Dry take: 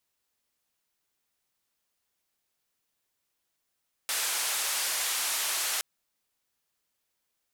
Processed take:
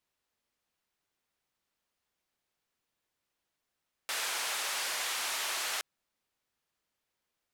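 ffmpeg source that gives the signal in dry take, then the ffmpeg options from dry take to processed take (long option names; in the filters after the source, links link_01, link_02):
-f lavfi -i "anoisesrc=color=white:duration=1.72:sample_rate=44100:seed=1,highpass=frequency=730,lowpass=frequency=12000,volume=-22.3dB"
-af "highshelf=frequency=5400:gain=-10"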